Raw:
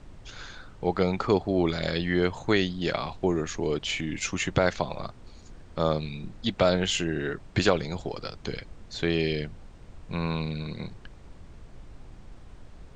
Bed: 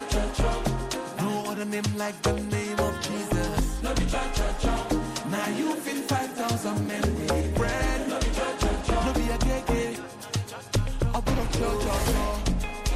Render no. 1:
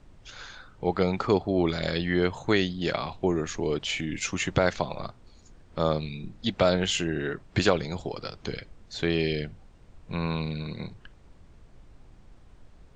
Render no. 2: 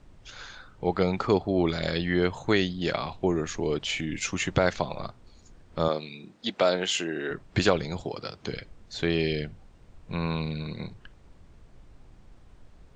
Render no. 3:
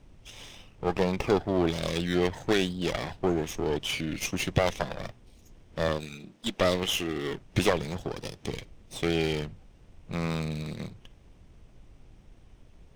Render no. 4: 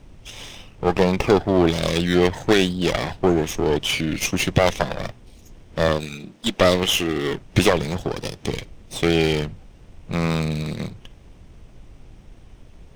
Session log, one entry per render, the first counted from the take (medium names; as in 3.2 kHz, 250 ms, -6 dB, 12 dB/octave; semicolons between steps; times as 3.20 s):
noise print and reduce 6 dB
5.88–7.31 s: high-pass 280 Hz; 8.03–8.53 s: high-pass 86 Hz
comb filter that takes the minimum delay 0.33 ms
trim +8.5 dB; peak limiter -3 dBFS, peak gain reduction 2.5 dB